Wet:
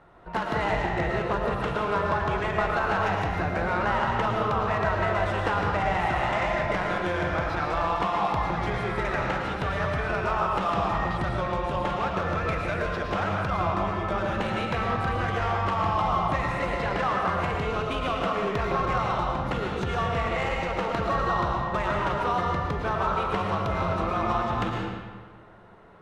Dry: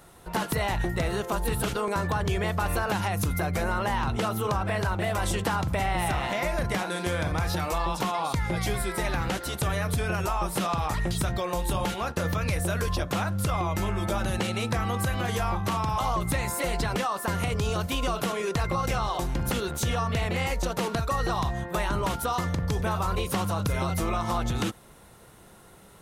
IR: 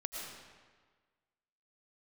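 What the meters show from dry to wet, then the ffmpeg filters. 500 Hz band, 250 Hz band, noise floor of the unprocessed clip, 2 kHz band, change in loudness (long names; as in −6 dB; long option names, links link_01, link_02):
+2.5 dB, −1.0 dB, −51 dBFS, +3.0 dB, +1.5 dB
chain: -filter_complex "[0:a]equalizer=frequency=1400:width=0.44:gain=6.5,adynamicsmooth=sensitivity=1:basefreq=2100[link_01];[1:a]atrim=start_sample=2205[link_02];[link_01][link_02]afir=irnorm=-1:irlink=0,volume=-1.5dB"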